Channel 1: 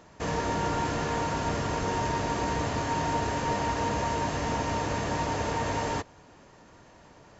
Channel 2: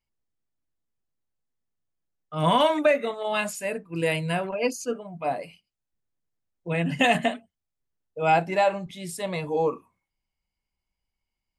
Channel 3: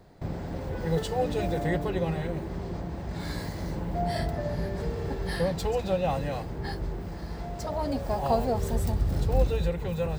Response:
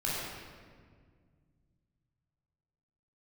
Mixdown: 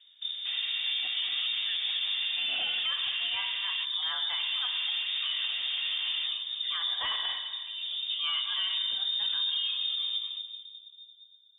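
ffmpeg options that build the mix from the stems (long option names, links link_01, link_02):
-filter_complex "[0:a]lowpass=1900,adelay=250,volume=-5dB,asplit=3[link_01][link_02][link_03];[link_01]atrim=end=3.85,asetpts=PTS-STARTPTS,afade=type=out:start_time=3.846:duration=0.004:curve=hsin[link_04];[link_02]atrim=start=3.85:end=4.39,asetpts=PTS-STARTPTS,volume=0[link_05];[link_03]atrim=start=4.39,asetpts=PTS-STARTPTS,afade=type=in:duration=0.004:curve=hsin[link_06];[link_04][link_05][link_06]concat=n=3:v=0:a=1[link_07];[1:a]asoftclip=type=tanh:threshold=-15.5dB,volume=-8dB,asplit=3[link_08][link_09][link_10];[link_09]volume=-10.5dB[link_11];[2:a]lowshelf=frequency=240:gain=7,volume=-10dB,asplit=3[link_12][link_13][link_14];[link_13]volume=-14.5dB[link_15];[link_14]volume=-7dB[link_16];[link_10]apad=whole_len=449181[link_17];[link_12][link_17]sidechaincompress=threshold=-38dB:ratio=8:attack=16:release=1500[link_18];[3:a]atrim=start_sample=2205[link_19];[link_11][link_15]amix=inputs=2:normalize=0[link_20];[link_20][link_19]afir=irnorm=-1:irlink=0[link_21];[link_16]aecho=0:1:235|470|705:1|0.17|0.0289[link_22];[link_07][link_08][link_18][link_21][link_22]amix=inputs=5:normalize=0,lowpass=frequency=3100:width_type=q:width=0.5098,lowpass=frequency=3100:width_type=q:width=0.6013,lowpass=frequency=3100:width_type=q:width=0.9,lowpass=frequency=3100:width_type=q:width=2.563,afreqshift=-3700,alimiter=limit=-22.5dB:level=0:latency=1:release=39"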